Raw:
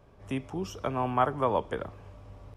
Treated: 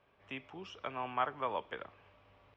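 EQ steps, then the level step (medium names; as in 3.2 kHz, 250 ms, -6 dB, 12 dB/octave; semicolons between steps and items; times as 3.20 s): four-pole ladder low-pass 3.5 kHz, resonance 30%; tilt EQ +3.5 dB/octave; -1.5 dB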